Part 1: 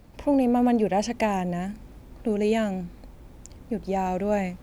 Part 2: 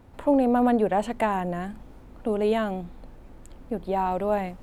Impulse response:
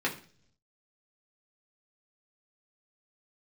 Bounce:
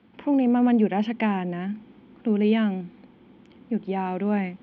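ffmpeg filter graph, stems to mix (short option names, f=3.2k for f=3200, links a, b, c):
-filter_complex "[0:a]volume=-6dB[a];[1:a]lowpass=f=1.4k:p=1,volume=-8dB[b];[a][b]amix=inputs=2:normalize=0,highpass=180,equalizer=f=210:t=q:w=4:g=10,equalizer=f=340:t=q:w=4:g=4,equalizer=f=610:t=q:w=4:g=-8,equalizer=f=1.5k:t=q:w=4:g=4,equalizer=f=2.2k:t=q:w=4:g=5,equalizer=f=3.2k:t=q:w=4:g=10,lowpass=f=3.6k:w=0.5412,lowpass=f=3.6k:w=1.3066"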